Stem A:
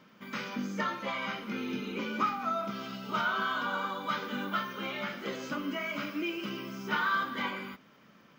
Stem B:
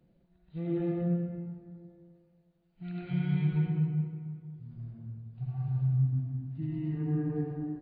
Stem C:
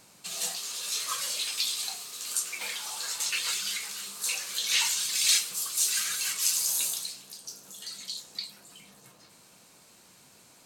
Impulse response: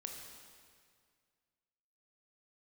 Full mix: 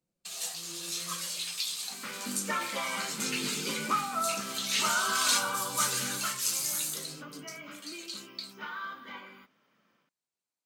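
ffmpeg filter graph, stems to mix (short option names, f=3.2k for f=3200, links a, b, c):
-filter_complex "[0:a]dynaudnorm=f=330:g=3:m=5.5dB,adelay=1700,volume=-4.5dB,afade=t=out:st=5.81:d=0.71:silence=0.298538[a];[1:a]volume=-15.5dB[b];[2:a]agate=range=-33dB:threshold=-44dB:ratio=16:detection=peak,volume=-4dB[c];[a][b][c]amix=inputs=3:normalize=0,lowshelf=f=230:g=-8.5"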